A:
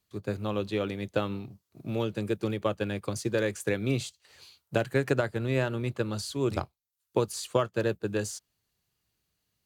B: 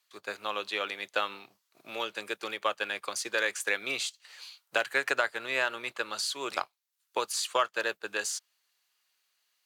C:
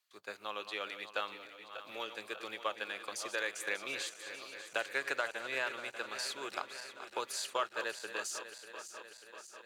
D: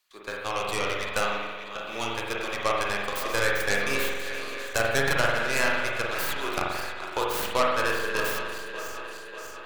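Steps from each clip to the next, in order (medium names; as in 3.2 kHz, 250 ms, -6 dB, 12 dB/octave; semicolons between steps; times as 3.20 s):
high-pass 1.1 kHz 12 dB/octave; treble shelf 6.8 kHz -6.5 dB; trim +8 dB
backward echo that repeats 296 ms, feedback 79%, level -11 dB; trim -7.5 dB
tracing distortion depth 0.29 ms; spring tank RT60 1.2 s, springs 44 ms, chirp 75 ms, DRR -2 dB; trim +8 dB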